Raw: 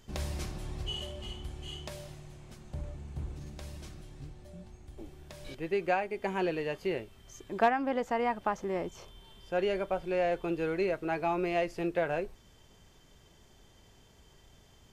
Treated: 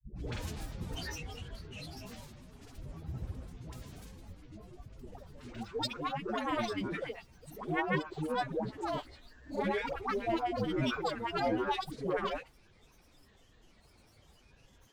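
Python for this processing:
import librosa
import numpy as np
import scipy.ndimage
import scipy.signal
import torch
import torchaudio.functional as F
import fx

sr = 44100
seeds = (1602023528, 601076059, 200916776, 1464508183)

y = fx.pitch_keep_formants(x, sr, semitones=3.5)
y = fx.granulator(y, sr, seeds[0], grain_ms=100.0, per_s=20.0, spray_ms=100.0, spread_st=12)
y = fx.dispersion(y, sr, late='highs', ms=146.0, hz=500.0)
y = F.gain(torch.from_numpy(y), -1.0).numpy()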